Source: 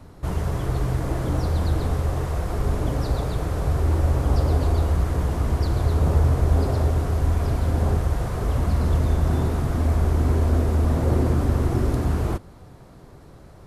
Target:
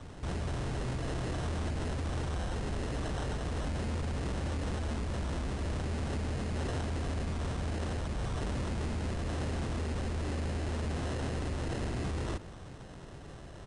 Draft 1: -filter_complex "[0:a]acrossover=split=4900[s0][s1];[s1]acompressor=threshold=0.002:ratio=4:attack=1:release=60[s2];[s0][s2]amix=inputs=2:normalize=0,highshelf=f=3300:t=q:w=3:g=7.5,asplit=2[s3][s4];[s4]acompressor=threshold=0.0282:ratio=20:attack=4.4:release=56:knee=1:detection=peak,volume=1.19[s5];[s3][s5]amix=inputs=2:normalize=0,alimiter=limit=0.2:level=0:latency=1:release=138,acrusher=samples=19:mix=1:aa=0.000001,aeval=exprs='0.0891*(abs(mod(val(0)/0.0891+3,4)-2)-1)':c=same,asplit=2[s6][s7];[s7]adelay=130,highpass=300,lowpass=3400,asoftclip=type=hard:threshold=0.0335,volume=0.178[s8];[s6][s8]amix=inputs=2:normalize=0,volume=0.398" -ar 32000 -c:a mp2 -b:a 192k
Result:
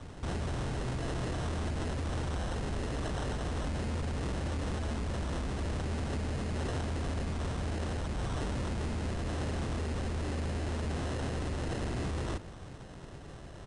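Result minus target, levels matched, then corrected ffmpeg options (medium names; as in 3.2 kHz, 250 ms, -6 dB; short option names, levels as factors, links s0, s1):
compression: peak gain reduction -10.5 dB
-filter_complex "[0:a]acrossover=split=4900[s0][s1];[s1]acompressor=threshold=0.002:ratio=4:attack=1:release=60[s2];[s0][s2]amix=inputs=2:normalize=0,highshelf=f=3300:t=q:w=3:g=7.5,asplit=2[s3][s4];[s4]acompressor=threshold=0.00794:ratio=20:attack=4.4:release=56:knee=1:detection=peak,volume=1.19[s5];[s3][s5]amix=inputs=2:normalize=0,alimiter=limit=0.2:level=0:latency=1:release=138,acrusher=samples=19:mix=1:aa=0.000001,aeval=exprs='0.0891*(abs(mod(val(0)/0.0891+3,4)-2)-1)':c=same,asplit=2[s6][s7];[s7]adelay=130,highpass=300,lowpass=3400,asoftclip=type=hard:threshold=0.0335,volume=0.178[s8];[s6][s8]amix=inputs=2:normalize=0,volume=0.398" -ar 32000 -c:a mp2 -b:a 192k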